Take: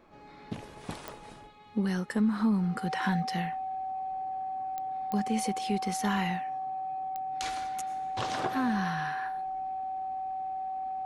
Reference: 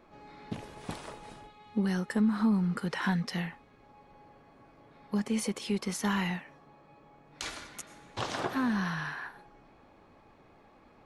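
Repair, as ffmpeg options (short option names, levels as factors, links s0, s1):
-af "adeclick=t=4,bandreject=f=760:w=30"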